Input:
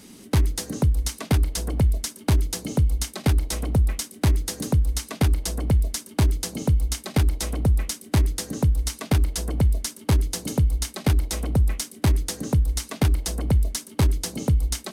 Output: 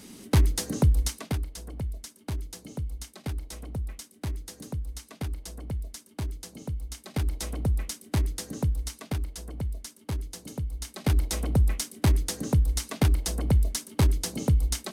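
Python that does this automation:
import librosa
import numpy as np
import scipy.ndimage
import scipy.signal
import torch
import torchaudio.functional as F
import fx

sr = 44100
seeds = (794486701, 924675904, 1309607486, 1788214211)

y = fx.gain(x, sr, db=fx.line((1.01, -0.5), (1.49, -13.0), (6.87, -13.0), (7.35, -6.0), (8.66, -6.0), (9.35, -12.0), (10.71, -12.0), (11.19, -2.0)))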